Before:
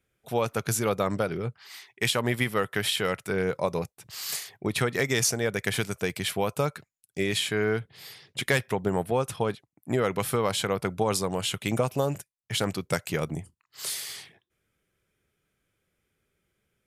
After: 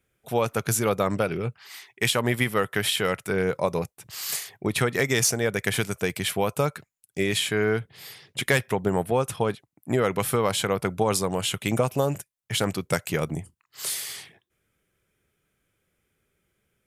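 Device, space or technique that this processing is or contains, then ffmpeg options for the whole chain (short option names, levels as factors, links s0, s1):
exciter from parts: -filter_complex "[0:a]asplit=2[s0][s1];[s1]highpass=f=4100:w=0.5412,highpass=f=4100:w=1.3066,asoftclip=type=tanh:threshold=0.0708,volume=0.282[s2];[s0][s2]amix=inputs=2:normalize=0,asettb=1/sr,asplit=3[s3][s4][s5];[s3]atrim=end=1.134[s6];[s4]atrim=start=1.13:end=1.59,asetpts=PTS-STARTPTS,afade=t=in:d=0.004:c=qsin,afade=t=out:st=0.456:d=0.004:c=qsin,equalizer=f=2600:t=o:w=0.21:g=9.5[s7];[s5]atrim=start=1.586[s8];[s6][s7]acrossfade=d=0.004:c1=hsin:c2=qsin[s9];[s9][s8]acrossfade=d=0.004:c1=qsin:c2=hsin,volume=1.33"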